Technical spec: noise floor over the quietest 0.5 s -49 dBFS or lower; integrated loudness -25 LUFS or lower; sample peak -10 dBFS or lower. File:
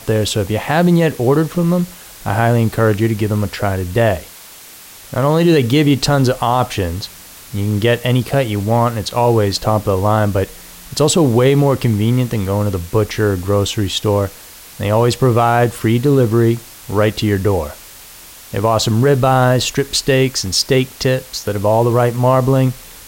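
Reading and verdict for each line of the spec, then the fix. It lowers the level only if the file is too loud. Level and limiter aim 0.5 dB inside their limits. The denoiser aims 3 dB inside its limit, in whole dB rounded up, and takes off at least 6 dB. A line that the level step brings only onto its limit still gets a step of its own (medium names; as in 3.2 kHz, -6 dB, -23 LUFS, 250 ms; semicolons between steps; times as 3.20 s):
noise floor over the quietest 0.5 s -38 dBFS: fail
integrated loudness -15.5 LUFS: fail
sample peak -3.5 dBFS: fail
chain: noise reduction 6 dB, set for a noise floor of -38 dBFS; trim -10 dB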